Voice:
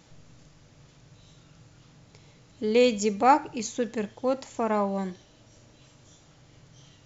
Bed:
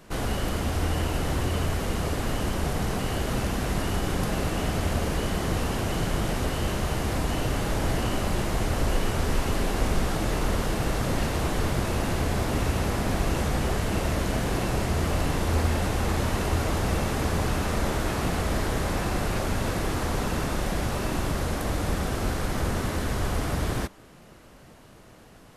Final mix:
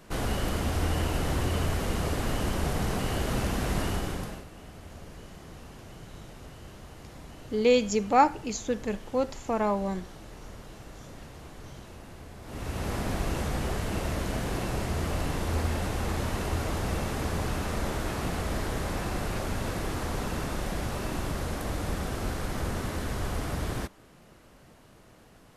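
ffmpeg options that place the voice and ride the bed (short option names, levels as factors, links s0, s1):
-filter_complex "[0:a]adelay=4900,volume=0.891[s0];[1:a]volume=4.73,afade=t=out:st=3.83:d=0.62:silence=0.125893,afade=t=in:st=12.42:d=0.52:silence=0.177828[s1];[s0][s1]amix=inputs=2:normalize=0"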